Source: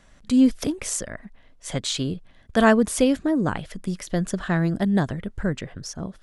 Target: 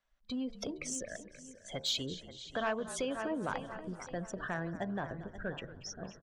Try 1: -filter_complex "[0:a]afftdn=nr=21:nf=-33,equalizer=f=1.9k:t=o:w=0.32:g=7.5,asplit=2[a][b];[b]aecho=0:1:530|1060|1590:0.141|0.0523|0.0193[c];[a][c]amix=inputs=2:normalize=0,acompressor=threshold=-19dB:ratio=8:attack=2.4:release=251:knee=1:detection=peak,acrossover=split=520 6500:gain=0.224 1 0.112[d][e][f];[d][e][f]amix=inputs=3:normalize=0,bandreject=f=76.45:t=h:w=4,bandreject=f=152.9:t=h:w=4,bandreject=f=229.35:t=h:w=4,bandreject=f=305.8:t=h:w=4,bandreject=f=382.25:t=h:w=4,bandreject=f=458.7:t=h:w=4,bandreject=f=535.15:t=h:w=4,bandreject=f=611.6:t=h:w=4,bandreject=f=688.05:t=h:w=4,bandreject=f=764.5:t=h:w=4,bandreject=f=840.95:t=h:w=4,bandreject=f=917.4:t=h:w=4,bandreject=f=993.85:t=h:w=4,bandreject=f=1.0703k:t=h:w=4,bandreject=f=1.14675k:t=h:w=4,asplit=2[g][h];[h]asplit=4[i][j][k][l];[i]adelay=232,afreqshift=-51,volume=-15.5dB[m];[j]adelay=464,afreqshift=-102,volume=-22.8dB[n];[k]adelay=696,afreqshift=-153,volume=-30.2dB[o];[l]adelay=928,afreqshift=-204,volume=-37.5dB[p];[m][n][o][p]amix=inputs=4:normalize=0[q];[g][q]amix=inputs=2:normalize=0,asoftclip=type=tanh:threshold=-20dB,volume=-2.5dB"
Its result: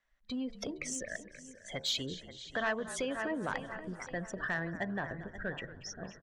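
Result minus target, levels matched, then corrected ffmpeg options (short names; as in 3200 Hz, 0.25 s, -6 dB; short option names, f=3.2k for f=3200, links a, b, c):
2000 Hz band +4.0 dB
-filter_complex "[0:a]afftdn=nr=21:nf=-33,equalizer=f=1.9k:t=o:w=0.32:g=-3.5,asplit=2[a][b];[b]aecho=0:1:530|1060|1590:0.141|0.0523|0.0193[c];[a][c]amix=inputs=2:normalize=0,acompressor=threshold=-19dB:ratio=8:attack=2.4:release=251:knee=1:detection=peak,acrossover=split=520 6500:gain=0.224 1 0.112[d][e][f];[d][e][f]amix=inputs=3:normalize=0,bandreject=f=76.45:t=h:w=4,bandreject=f=152.9:t=h:w=4,bandreject=f=229.35:t=h:w=4,bandreject=f=305.8:t=h:w=4,bandreject=f=382.25:t=h:w=4,bandreject=f=458.7:t=h:w=4,bandreject=f=535.15:t=h:w=4,bandreject=f=611.6:t=h:w=4,bandreject=f=688.05:t=h:w=4,bandreject=f=764.5:t=h:w=4,bandreject=f=840.95:t=h:w=4,bandreject=f=917.4:t=h:w=4,bandreject=f=993.85:t=h:w=4,bandreject=f=1.0703k:t=h:w=4,bandreject=f=1.14675k:t=h:w=4,asplit=2[g][h];[h]asplit=4[i][j][k][l];[i]adelay=232,afreqshift=-51,volume=-15.5dB[m];[j]adelay=464,afreqshift=-102,volume=-22.8dB[n];[k]adelay=696,afreqshift=-153,volume=-30.2dB[o];[l]adelay=928,afreqshift=-204,volume=-37.5dB[p];[m][n][o][p]amix=inputs=4:normalize=0[q];[g][q]amix=inputs=2:normalize=0,asoftclip=type=tanh:threshold=-20dB,volume=-2.5dB"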